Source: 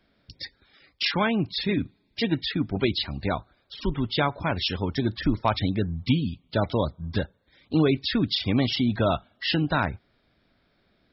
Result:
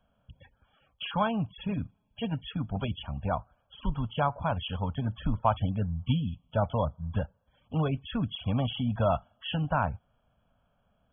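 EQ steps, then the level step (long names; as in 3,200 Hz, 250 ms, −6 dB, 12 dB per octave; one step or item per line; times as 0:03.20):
linear-phase brick-wall low-pass 3,400 Hz
phaser with its sweep stopped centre 840 Hz, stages 4
0.0 dB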